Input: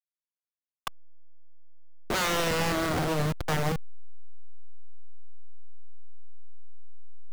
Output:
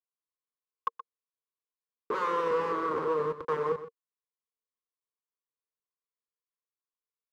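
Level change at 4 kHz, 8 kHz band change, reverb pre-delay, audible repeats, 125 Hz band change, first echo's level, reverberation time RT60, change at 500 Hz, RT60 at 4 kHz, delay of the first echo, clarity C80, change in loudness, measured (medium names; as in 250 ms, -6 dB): -17.5 dB, under -20 dB, no reverb, 1, -17.0 dB, -13.0 dB, no reverb, +2.0 dB, no reverb, 124 ms, no reverb, -3.0 dB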